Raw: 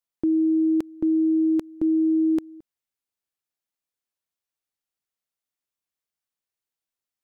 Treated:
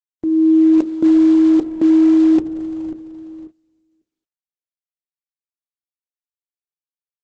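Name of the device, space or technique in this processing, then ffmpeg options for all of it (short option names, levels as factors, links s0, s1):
video call: -filter_complex "[0:a]afwtdn=0.0158,highpass=f=170:p=1,bandreject=f=60:t=h:w=6,bandreject=f=120:t=h:w=6,bandreject=f=180:t=h:w=6,bandreject=f=240:t=h:w=6,bandreject=f=300:t=h:w=6,bandreject=f=360:t=h:w=6,bandreject=f=420:t=h:w=6,bandreject=f=480:t=h:w=6,bandreject=f=540:t=h:w=6,asplit=2[s0][s1];[s1]adelay=543,lowpass=f=820:p=1,volume=0.224,asplit=2[s2][s3];[s3]adelay=543,lowpass=f=820:p=1,volume=0.35,asplit=2[s4][s5];[s5]adelay=543,lowpass=f=820:p=1,volume=0.35[s6];[s0][s2][s4][s6]amix=inputs=4:normalize=0,dynaudnorm=f=100:g=7:m=3.55,agate=range=0.1:threshold=0.0158:ratio=16:detection=peak" -ar 48000 -c:a libopus -b:a 12k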